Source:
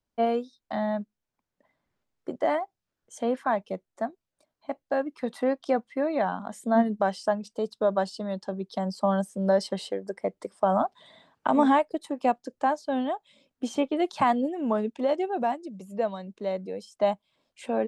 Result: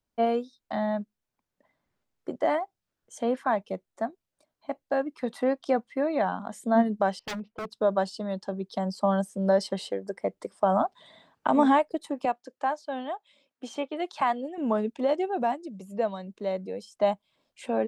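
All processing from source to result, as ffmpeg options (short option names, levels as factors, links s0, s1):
-filter_complex "[0:a]asettb=1/sr,asplit=3[s0][s1][s2];[s0]atrim=end=7.194[s3];[s1]atrim=start=7.19:end=7.7,asetpts=PTS-STARTPTS,afade=t=in:d=0.004:c=qsin,afade=t=out:st=0.506:d=0.004:c=qsin,lowpass=f=2300:w=0.5412,lowpass=f=2300:w=1.3066,aeval=exprs='0.0376*(abs(mod(val(0)/0.0376+3,4)-2)-1)':c=same[s4];[s2]atrim=start=7.696[s5];[s3][s4]acrossfade=d=0.004:c1=hsin:c2=qsin[s6];[s6][s5]acrossfade=d=0.004:c1=qsin:c2=hsin,asettb=1/sr,asplit=3[s7][s8][s9];[s7]atrim=end=12.254[s10];[s8]atrim=start=12.25:end=14.58,asetpts=PTS-STARTPTS,afade=t=in:d=0.004:c=qsin,afade=t=out:st=2.326:d=0.004:c=qsin,highpass=f=700:p=1,highshelf=f=5500:g=-8[s11];[s9]atrim=start=14.576[s12];[s10][s11]acrossfade=d=0.004:c1=hsin:c2=qsin[s13];[s13][s12]acrossfade=d=0.004:c1=qsin:c2=hsin"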